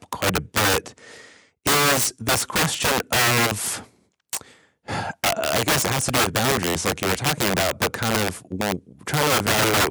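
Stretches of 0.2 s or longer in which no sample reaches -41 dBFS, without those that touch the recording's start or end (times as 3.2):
1.36–1.65
3.85–4.33
4.51–4.88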